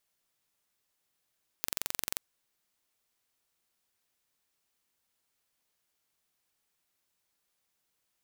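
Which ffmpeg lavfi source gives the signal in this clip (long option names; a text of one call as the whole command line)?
ffmpeg -f lavfi -i "aevalsrc='0.596*eq(mod(n,1943),0)':duration=0.53:sample_rate=44100" out.wav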